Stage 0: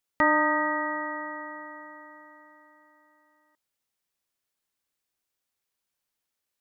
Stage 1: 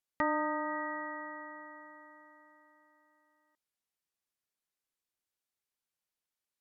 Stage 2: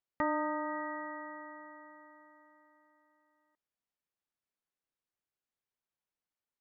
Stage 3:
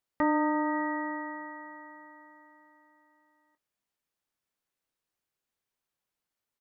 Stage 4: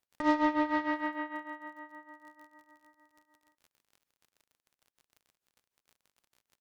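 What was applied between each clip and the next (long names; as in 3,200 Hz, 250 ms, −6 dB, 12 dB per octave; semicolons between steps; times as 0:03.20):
treble cut that deepens with the level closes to 1,400 Hz, closed at −21.5 dBFS; level −7.5 dB
low-pass filter 1,800 Hz 6 dB per octave
in parallel at −2 dB: brickwall limiter −28.5 dBFS, peak gain reduction 9 dB; on the sum: dynamic equaliser 320 Hz, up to +5 dB, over −44 dBFS, Q 0.85; double-tracking delay 24 ms −11.5 dB
harmonic generator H 8 −24 dB, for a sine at −16 dBFS; surface crackle 43 per second −49 dBFS; amplitude tremolo 6.6 Hz, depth 79%; level +2.5 dB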